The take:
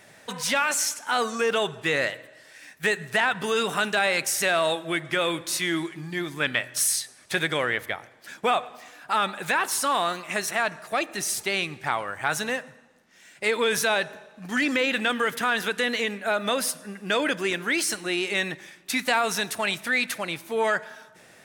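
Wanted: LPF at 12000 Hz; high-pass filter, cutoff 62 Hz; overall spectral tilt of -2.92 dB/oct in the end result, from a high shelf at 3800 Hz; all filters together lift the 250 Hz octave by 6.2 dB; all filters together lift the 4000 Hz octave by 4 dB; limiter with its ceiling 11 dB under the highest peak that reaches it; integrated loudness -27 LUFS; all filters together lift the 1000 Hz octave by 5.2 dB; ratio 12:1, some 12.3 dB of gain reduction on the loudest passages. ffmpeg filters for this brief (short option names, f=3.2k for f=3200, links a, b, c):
-af "highpass=62,lowpass=12k,equalizer=f=250:t=o:g=7.5,equalizer=f=1k:t=o:g=6.5,highshelf=f=3.8k:g=-6,equalizer=f=4k:t=o:g=8,acompressor=threshold=-27dB:ratio=12,volume=7dB,alimiter=limit=-16.5dB:level=0:latency=1"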